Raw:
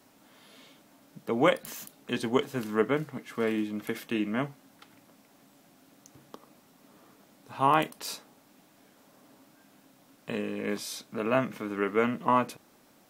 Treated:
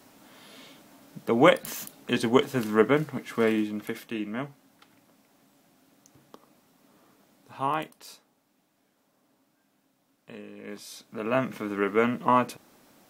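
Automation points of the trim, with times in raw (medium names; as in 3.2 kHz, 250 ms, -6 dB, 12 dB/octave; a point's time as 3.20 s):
3.46 s +5 dB
4.12 s -3 dB
7.57 s -3 dB
8.14 s -10.5 dB
10.55 s -10.5 dB
11.52 s +2.5 dB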